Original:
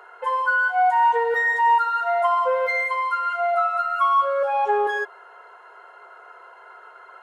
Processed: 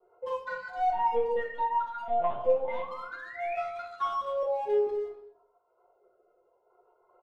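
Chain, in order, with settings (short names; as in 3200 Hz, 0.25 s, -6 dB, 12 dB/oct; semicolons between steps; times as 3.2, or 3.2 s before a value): Wiener smoothing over 25 samples; reverb removal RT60 1.3 s; expander -49 dBFS; EQ curve 310 Hz 0 dB, 1100 Hz -11 dB, 1600 Hz -14 dB; 2.08–3.57 painted sound rise 440–2600 Hz -42 dBFS; rotary speaker horn 5.5 Hz, later 0.65 Hz, at 1.79; 0.92–2.91 LPC vocoder at 8 kHz pitch kept; speakerphone echo 0.25 s, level -13 dB; shoebox room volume 81 m³, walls mixed, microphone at 0.83 m; gain +1 dB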